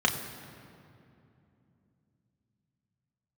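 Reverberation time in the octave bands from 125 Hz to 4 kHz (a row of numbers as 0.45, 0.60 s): 4.6, 4.2, 3.0, 2.5, 2.2, 1.6 s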